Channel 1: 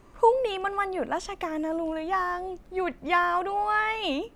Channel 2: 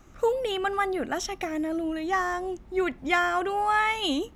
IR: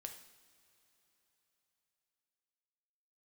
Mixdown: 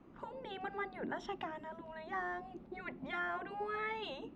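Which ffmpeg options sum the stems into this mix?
-filter_complex "[0:a]agate=range=-6dB:threshold=-47dB:ratio=16:detection=peak,equalizer=f=1.8k:t=o:w=0.62:g=-6.5,acompressor=threshold=-32dB:ratio=5,volume=-4.5dB[a];[1:a]tiltshelf=f=710:g=10,volume=-6dB[b];[a][b]amix=inputs=2:normalize=0,acrossover=split=180 3800:gain=0.0794 1 0.0708[c][d][e];[c][d][e]amix=inputs=3:normalize=0,afftfilt=real='re*lt(hypot(re,im),0.141)':imag='im*lt(hypot(re,im),0.141)':win_size=1024:overlap=0.75"

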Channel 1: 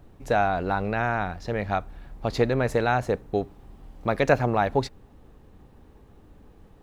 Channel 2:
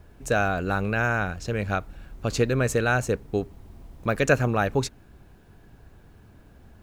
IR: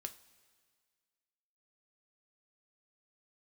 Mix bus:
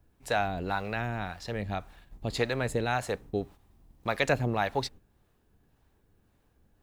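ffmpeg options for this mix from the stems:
-filter_complex "[0:a]agate=range=-12dB:threshold=-40dB:ratio=16:detection=peak,tiltshelf=f=1.4k:g=-4.5,acrossover=split=490[a][b];[a]aeval=exprs='val(0)*(1-0.7/2+0.7/2*cos(2*PI*1.8*n/s))':c=same[c];[b]aeval=exprs='val(0)*(1-0.7/2-0.7/2*cos(2*PI*1.8*n/s))':c=same[d];[c][d]amix=inputs=2:normalize=0,volume=0dB[e];[1:a]highshelf=f=6.7k:g=9.5,volume=-18.5dB[f];[e][f]amix=inputs=2:normalize=0"

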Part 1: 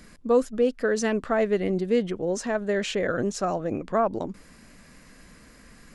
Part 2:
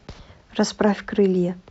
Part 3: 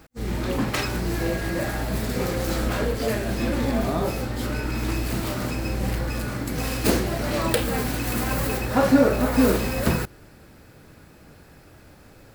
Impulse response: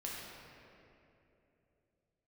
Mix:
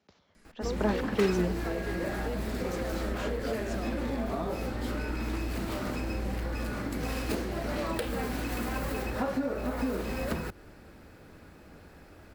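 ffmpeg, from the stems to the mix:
-filter_complex "[0:a]adelay=350,volume=-11dB[a];[1:a]highpass=120,volume=-7.5dB,afade=t=in:st=0.62:d=0.34:silence=0.266073[b];[2:a]highshelf=f=4.5k:g=-8,adelay=450,volume=-1.5dB[c];[a][c]amix=inputs=2:normalize=0,acompressor=threshold=-28dB:ratio=6,volume=0dB[d];[b][d]amix=inputs=2:normalize=0,equalizer=f=130:t=o:w=0.3:g=-12"

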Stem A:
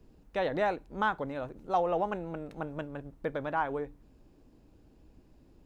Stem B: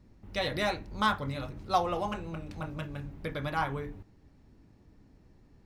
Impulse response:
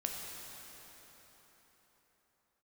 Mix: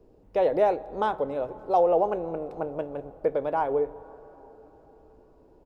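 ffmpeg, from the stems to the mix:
-filter_complex "[0:a]firequalizer=gain_entry='entry(230,0);entry(430,13);entry(1700,-4)':delay=0.05:min_phase=1,volume=-3.5dB,asplit=2[a][b];[b]volume=-15.5dB[c];[1:a]volume=-14.5dB[d];[2:a]atrim=start_sample=2205[e];[c][e]afir=irnorm=-1:irlink=0[f];[a][d][f]amix=inputs=3:normalize=0"

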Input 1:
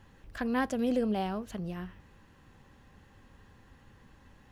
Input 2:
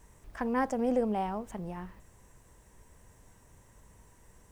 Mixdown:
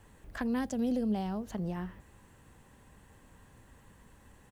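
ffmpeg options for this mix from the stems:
-filter_complex "[0:a]volume=-2dB[a];[1:a]highpass=56,equalizer=f=4.7k:t=o:w=0.79:g=-9,bandreject=f=5.5k:w=16,adelay=0.3,volume=-2.5dB[b];[a][b]amix=inputs=2:normalize=0,acrossover=split=250|3000[c][d][e];[d]acompressor=threshold=-37dB:ratio=6[f];[c][f][e]amix=inputs=3:normalize=0"

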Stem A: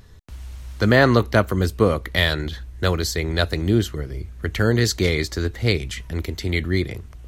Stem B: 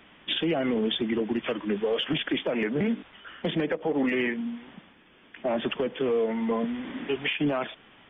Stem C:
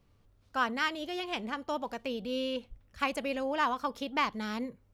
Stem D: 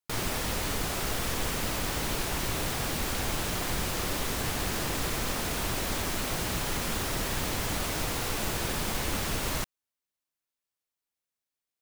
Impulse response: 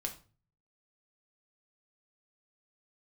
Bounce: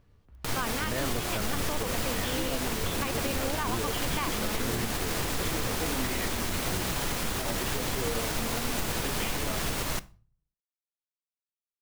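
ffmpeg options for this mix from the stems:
-filter_complex "[0:a]lowpass=1.7k,volume=-16dB[a];[1:a]flanger=delay=15.5:depth=3.5:speed=2.2,adelay=1950,volume=-6.5dB[b];[2:a]volume=0dB[c];[3:a]acompressor=mode=upward:threshold=-33dB:ratio=2.5,aeval=exprs='sgn(val(0))*max(abs(val(0))-0.00531,0)':c=same,adelay=350,volume=0.5dB,asplit=2[d][e];[e]volume=-9.5dB[f];[4:a]atrim=start_sample=2205[g];[f][g]afir=irnorm=-1:irlink=0[h];[a][b][c][d][h]amix=inputs=5:normalize=0,alimiter=limit=-19dB:level=0:latency=1:release=99"

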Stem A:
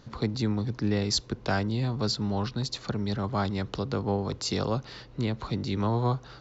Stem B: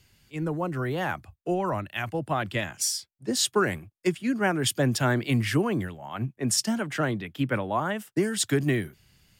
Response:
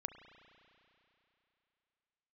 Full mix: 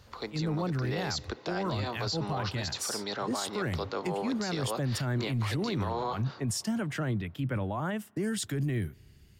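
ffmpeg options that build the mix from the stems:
-filter_complex "[0:a]highpass=500,dynaudnorm=f=470:g=3:m=7dB,alimiter=limit=-17.5dB:level=0:latency=1:release=128,volume=-5dB,asplit=2[a][b];[b]volume=-4.5dB[c];[1:a]equalizer=f=63:t=o:w=2.7:g=13.5,volume=-5dB,asplit=2[d][e];[e]volume=-23.5dB[f];[2:a]atrim=start_sample=2205[g];[c][f]amix=inputs=2:normalize=0[h];[h][g]afir=irnorm=-1:irlink=0[i];[a][d][i]amix=inputs=3:normalize=0,alimiter=limit=-24dB:level=0:latency=1:release=13"

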